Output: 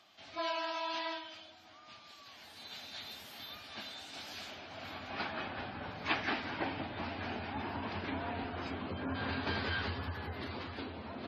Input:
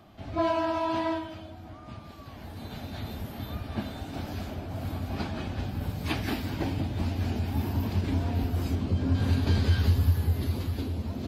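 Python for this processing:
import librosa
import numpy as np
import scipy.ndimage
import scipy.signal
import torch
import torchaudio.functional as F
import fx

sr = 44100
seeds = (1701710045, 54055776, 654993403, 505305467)

y = fx.filter_sweep_bandpass(x, sr, from_hz=4600.0, to_hz=1500.0, start_s=4.19, end_s=5.49, q=0.79)
y = fx.spec_gate(y, sr, threshold_db=-30, keep='strong')
y = y * librosa.db_to_amplitude(3.5)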